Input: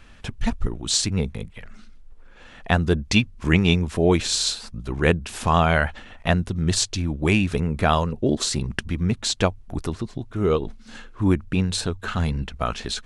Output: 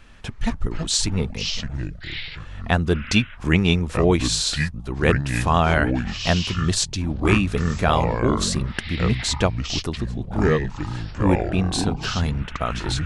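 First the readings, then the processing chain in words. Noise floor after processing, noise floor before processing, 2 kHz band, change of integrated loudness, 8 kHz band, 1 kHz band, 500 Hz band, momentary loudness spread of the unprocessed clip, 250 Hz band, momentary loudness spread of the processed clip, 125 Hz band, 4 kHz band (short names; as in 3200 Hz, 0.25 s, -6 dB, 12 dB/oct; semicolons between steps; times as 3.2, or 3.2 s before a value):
-38 dBFS, -46 dBFS, +1.5 dB, +0.5 dB, +0.5 dB, +1.0 dB, +0.5 dB, 10 LU, +1.0 dB, 10 LU, +1.5 dB, +1.5 dB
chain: echoes that change speed 0.13 s, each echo -6 st, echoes 3, each echo -6 dB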